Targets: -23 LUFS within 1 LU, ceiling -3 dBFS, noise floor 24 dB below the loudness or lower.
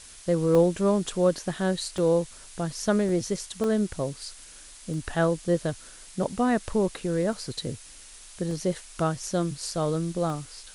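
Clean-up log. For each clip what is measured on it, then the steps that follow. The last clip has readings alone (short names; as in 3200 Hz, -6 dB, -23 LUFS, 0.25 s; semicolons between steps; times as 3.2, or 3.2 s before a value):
dropouts 8; longest dropout 1.2 ms; noise floor -47 dBFS; noise floor target -51 dBFS; loudness -27.0 LUFS; peak -10.0 dBFS; loudness target -23.0 LUFS
-> interpolate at 0.55/1.98/3.09/3.64/4.94/7.33/8.51/10.3, 1.2 ms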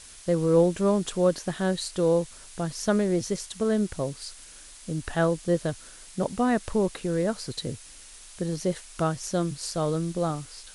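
dropouts 0; noise floor -47 dBFS; noise floor target -51 dBFS
-> noise print and reduce 6 dB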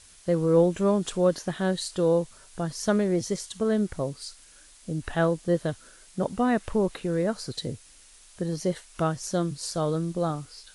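noise floor -53 dBFS; loudness -27.0 LUFS; peak -10.5 dBFS; loudness target -23.0 LUFS
-> gain +4 dB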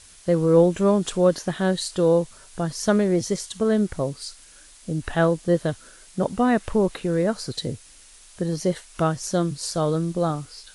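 loudness -23.0 LUFS; peak -6.5 dBFS; noise floor -49 dBFS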